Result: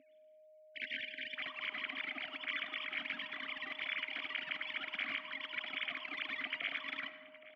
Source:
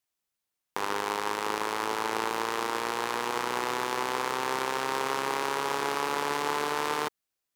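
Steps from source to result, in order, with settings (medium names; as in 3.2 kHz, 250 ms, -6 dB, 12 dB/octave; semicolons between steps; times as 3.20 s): formants replaced by sine waves; in parallel at -1.5 dB: peak limiter -30 dBFS, peak gain reduction 10.5 dB; on the sum: waveshaping leveller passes 1; reverse; upward compressor, threshold -39 dBFS; reverse; spectral selection erased 0.54–1.36 s, 420–1500 Hz; whistle 620 Hz -41 dBFS; vowel filter i; echo from a far wall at 140 m, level -15 dB; reverberation RT60 1.4 s, pre-delay 40 ms, DRR 11 dB; trim +4.5 dB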